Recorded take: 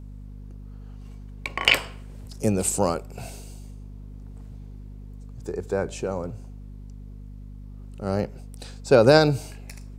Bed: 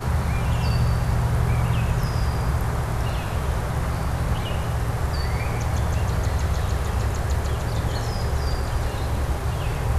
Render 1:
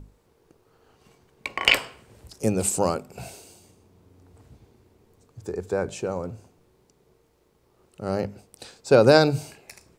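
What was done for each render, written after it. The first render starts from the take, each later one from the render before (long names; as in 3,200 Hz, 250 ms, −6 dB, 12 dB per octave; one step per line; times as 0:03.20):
mains-hum notches 50/100/150/200/250 Hz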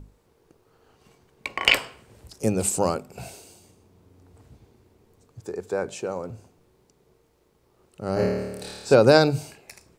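0:05.40–0:06.30: high-pass filter 240 Hz 6 dB per octave
0:08.14–0:08.94: flutter between parallel walls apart 4.6 metres, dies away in 1.2 s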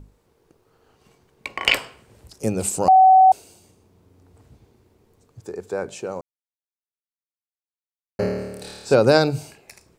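0:02.88–0:03.32: beep over 756 Hz −8 dBFS
0:06.21–0:08.19: silence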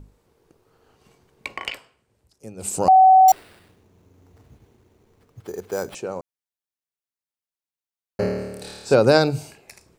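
0:01.52–0:02.76: duck −16 dB, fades 0.19 s
0:03.28–0:05.95: sample-rate reduction 6,500 Hz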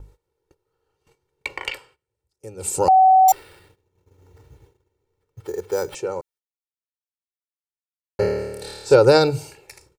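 noise gate −54 dBFS, range −17 dB
comb filter 2.2 ms, depth 75%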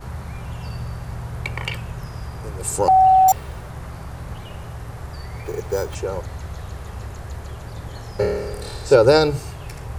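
mix in bed −9 dB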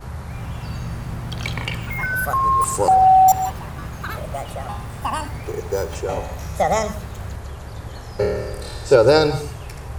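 reverb whose tail is shaped and stops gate 190 ms rising, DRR 11.5 dB
delay with pitch and tempo change per echo 295 ms, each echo +6 semitones, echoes 3, each echo −6 dB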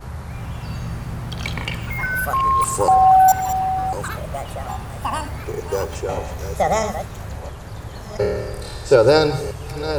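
delay that plays each chunk backwards 681 ms, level −10 dB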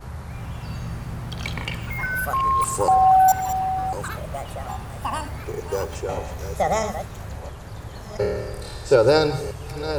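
level −3 dB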